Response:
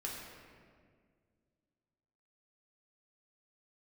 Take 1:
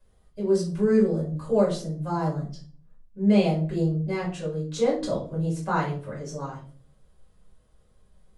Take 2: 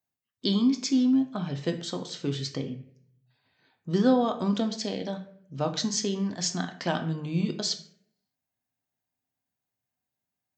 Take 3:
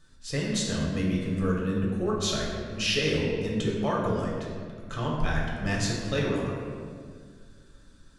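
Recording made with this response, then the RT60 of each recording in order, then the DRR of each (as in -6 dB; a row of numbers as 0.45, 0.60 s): 3; 0.45, 0.60, 1.9 s; -7.5, 5.5, -4.0 dB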